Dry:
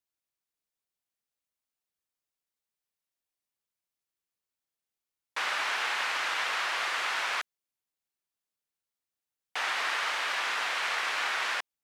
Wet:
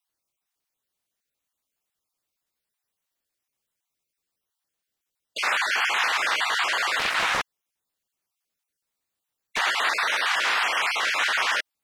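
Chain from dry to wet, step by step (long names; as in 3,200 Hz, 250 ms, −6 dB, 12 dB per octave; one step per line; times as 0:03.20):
time-frequency cells dropped at random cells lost 27%
0:06.99–0:09.59: highs frequency-modulated by the lows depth 0.49 ms
level +8 dB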